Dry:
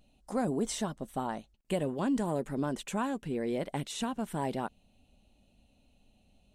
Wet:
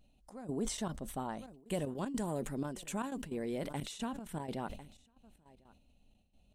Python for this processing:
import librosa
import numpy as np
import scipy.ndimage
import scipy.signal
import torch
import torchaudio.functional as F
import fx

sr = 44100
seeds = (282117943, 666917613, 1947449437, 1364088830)

y = fx.high_shelf(x, sr, hz=6000.0, db=8.0, at=(1.38, 3.83))
y = y + 10.0 ** (-23.0 / 20.0) * np.pad(y, (int(1050 * sr / 1000.0), 0))[:len(y)]
y = fx.step_gate(y, sr, bpm=154, pattern='xxx..xx.x.xx', floor_db=-12.0, edge_ms=4.5)
y = fx.low_shelf(y, sr, hz=140.0, db=5.0)
y = fx.sustainer(y, sr, db_per_s=71.0)
y = y * librosa.db_to_amplitude(-6.0)